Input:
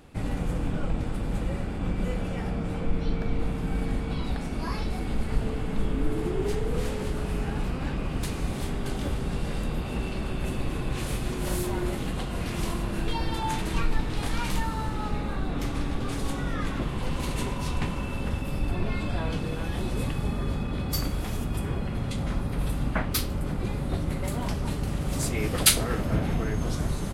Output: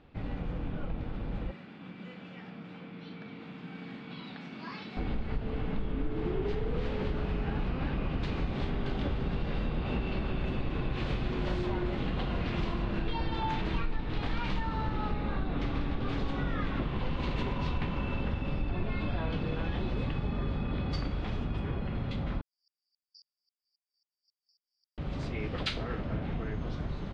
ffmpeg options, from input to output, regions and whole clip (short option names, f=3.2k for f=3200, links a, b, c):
-filter_complex "[0:a]asettb=1/sr,asplit=3[a][b][c];[a]atrim=end=1.514[d];[b]atrim=start=1.51:end=4.97,asetpts=PTS-STARTPTS,afade=t=in:d=0.004:c=qsin,afade=t=out:st=3.456:d=0.004:c=qsin,highpass=f=180:w=0.5412,highpass=f=180:w=1.3066,equalizer=f=510:w=0.52:g=-11[e];[c]atrim=start=4.966[f];[d][e]acrossfade=d=0.004:c1=hsin:c2=qsin[g];[g][f]acrossfade=d=0.004:c1=qsin:c2=hsin,asettb=1/sr,asplit=3[h][i][j];[h]atrim=end=22.414[k];[i]atrim=start=22.41:end=24.98,asetpts=PTS-STARTPTS,afade=t=in:d=0.004:c=qsin,afade=t=out:st=2.566:d=0.004:c=qsin,asuperpass=centerf=5100:order=20:qfactor=4.4,aeval=exprs='val(0)*pow(10,-35*if(lt(mod(-3.7*n/s,1),2*abs(-3.7)/1000),1-mod(-3.7*n/s,1)/(2*abs(-3.7)/1000),(mod(-3.7*n/s,1)-2*abs(-3.7)/1000)/(1-2*abs(-3.7)/1000))/20)':c=same[l];[j]atrim=start=24.976[m];[k][l]acrossfade=d=0.004:c1=hsin:c2=qsin[n];[n][m]acrossfade=d=0.004:c1=qsin:c2=hsin,dynaudnorm=f=520:g=21:m=11.5dB,lowpass=f=4k:w=0.5412,lowpass=f=4k:w=1.3066,acompressor=threshold=-22dB:ratio=4,volume=-6.5dB"